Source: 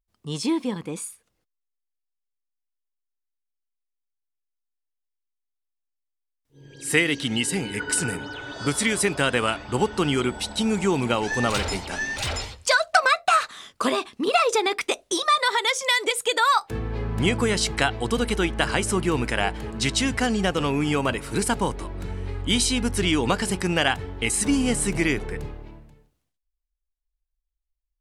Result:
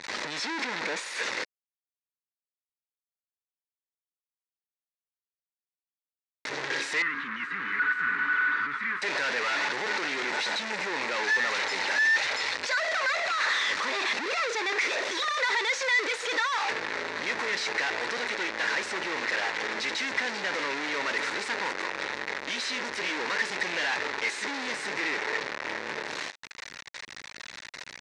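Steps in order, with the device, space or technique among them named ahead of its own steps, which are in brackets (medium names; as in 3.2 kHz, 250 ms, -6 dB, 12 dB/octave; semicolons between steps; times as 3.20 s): home computer beeper (one-bit comparator; cabinet simulation 640–5100 Hz, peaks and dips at 710 Hz -8 dB, 1.2 kHz -5 dB, 1.9 kHz +6 dB, 3.1 kHz -8 dB, 4.9 kHz -4 dB); 7.02–9.02 s: FFT filter 250 Hz 0 dB, 710 Hz -26 dB, 1.2 kHz +8 dB, 5.5 kHz -24 dB; trim +1.5 dB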